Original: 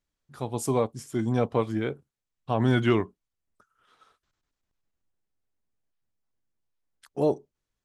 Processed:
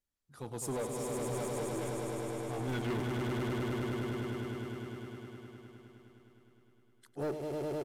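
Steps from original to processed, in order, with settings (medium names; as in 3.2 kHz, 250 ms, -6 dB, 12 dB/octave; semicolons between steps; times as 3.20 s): coarse spectral quantiser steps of 15 dB; treble shelf 9.6 kHz +10.5 dB; in parallel at -11 dB: bit crusher 4-bit; 1.11–2.68 s: on the sum: feedback comb 65 Hz, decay 0.22 s, harmonics all, mix 100%; on a send: echo with a slow build-up 103 ms, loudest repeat 5, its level -6 dB; on the sum: resampled via 32 kHz; saturation -23 dBFS, distortion -8 dB; trim -8 dB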